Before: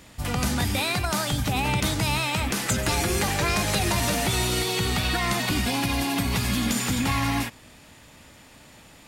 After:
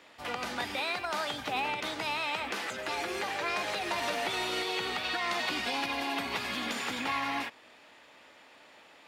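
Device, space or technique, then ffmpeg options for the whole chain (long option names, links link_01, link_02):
DJ mixer with the lows and highs turned down: -filter_complex "[0:a]acrossover=split=330 4400:gain=0.0631 1 0.158[link_01][link_02][link_03];[link_01][link_02][link_03]amix=inputs=3:normalize=0,alimiter=limit=-18.5dB:level=0:latency=1:release=419,asettb=1/sr,asplit=3[link_04][link_05][link_06];[link_04]atrim=end=5.044[link_07];[link_05]atrim=start=5.04:end=5.86,asetpts=PTS-STARTPTS,afade=type=in:duration=0.004:curve=qsin,afade=type=out:start_time=0.816:duration=0.004:curve=qsin,equalizer=frequency=5600:width_type=o:width=1.4:gain=3.5[link_08];[link_06]atrim=start=5.856[link_09];[link_07][link_08]acrossfade=duration=0.004:curve1=hsin:curve2=qsin[link_10];[link_10][link_09]acrossfade=duration=0.004:curve1=qsin:curve2=hsin,highpass=55,volume=-2.5dB"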